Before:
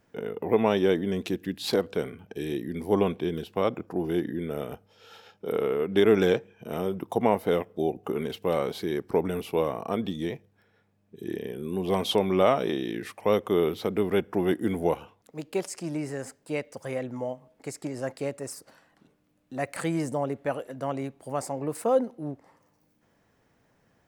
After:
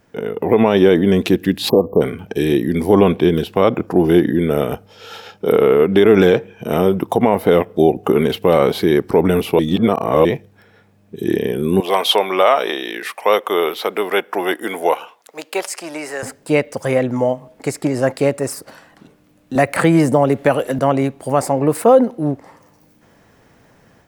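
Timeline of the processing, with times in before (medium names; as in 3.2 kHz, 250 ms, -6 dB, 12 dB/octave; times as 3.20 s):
1.69–2.02 s: spectral selection erased 1.2–12 kHz
9.59–10.25 s: reverse
11.80–16.23 s: high-pass 690 Hz
19.55–20.79 s: three bands compressed up and down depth 70%
whole clip: dynamic bell 6.7 kHz, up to -6 dB, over -52 dBFS, Q 0.97; level rider gain up to 6 dB; loudness maximiser +10.5 dB; trim -1 dB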